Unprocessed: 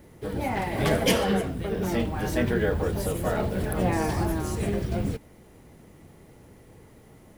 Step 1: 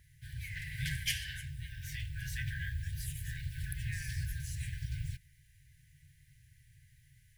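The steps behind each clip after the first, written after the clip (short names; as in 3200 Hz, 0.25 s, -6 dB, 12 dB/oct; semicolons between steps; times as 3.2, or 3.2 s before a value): FFT band-reject 160–1500 Hz; gain -7.5 dB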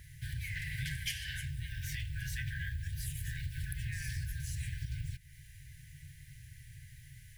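compressor 4:1, threshold -47 dBFS, peak gain reduction 15.5 dB; gain +10 dB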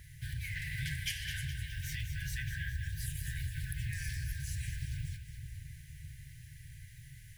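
split-band echo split 350 Hz, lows 0.61 s, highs 0.208 s, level -8.5 dB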